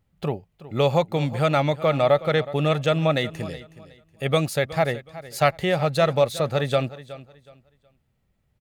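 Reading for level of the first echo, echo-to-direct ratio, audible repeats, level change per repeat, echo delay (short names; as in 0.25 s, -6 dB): -16.5 dB, -16.0 dB, 2, -11.5 dB, 0.369 s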